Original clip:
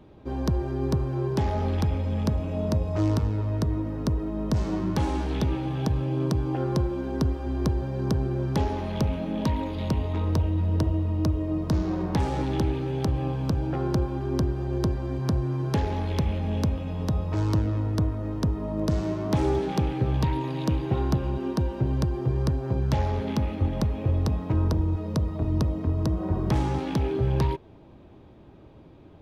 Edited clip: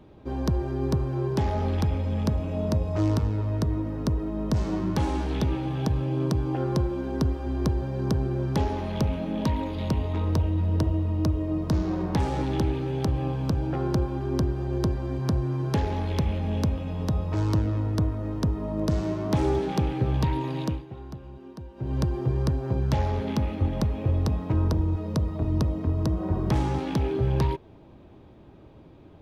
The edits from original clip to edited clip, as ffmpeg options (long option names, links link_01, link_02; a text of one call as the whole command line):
ffmpeg -i in.wav -filter_complex "[0:a]asplit=3[link_01][link_02][link_03];[link_01]atrim=end=20.85,asetpts=PTS-STARTPTS,afade=type=out:start_time=20.6:duration=0.25:silence=0.177828[link_04];[link_02]atrim=start=20.85:end=21.75,asetpts=PTS-STARTPTS,volume=-15dB[link_05];[link_03]atrim=start=21.75,asetpts=PTS-STARTPTS,afade=type=in:duration=0.25:silence=0.177828[link_06];[link_04][link_05][link_06]concat=n=3:v=0:a=1" out.wav